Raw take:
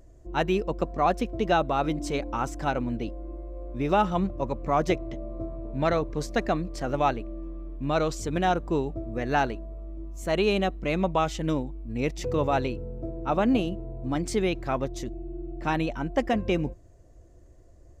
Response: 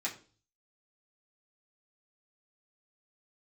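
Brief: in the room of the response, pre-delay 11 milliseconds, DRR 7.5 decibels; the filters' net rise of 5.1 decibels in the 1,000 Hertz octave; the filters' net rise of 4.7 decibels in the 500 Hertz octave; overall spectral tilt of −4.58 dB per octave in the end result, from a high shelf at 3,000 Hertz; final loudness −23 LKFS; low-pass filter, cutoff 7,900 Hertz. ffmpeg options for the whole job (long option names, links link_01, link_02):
-filter_complex "[0:a]lowpass=7900,equalizer=frequency=500:width_type=o:gain=4.5,equalizer=frequency=1000:width_type=o:gain=4.5,highshelf=frequency=3000:gain=5.5,asplit=2[link_01][link_02];[1:a]atrim=start_sample=2205,adelay=11[link_03];[link_02][link_03]afir=irnorm=-1:irlink=0,volume=-11dB[link_04];[link_01][link_04]amix=inputs=2:normalize=0"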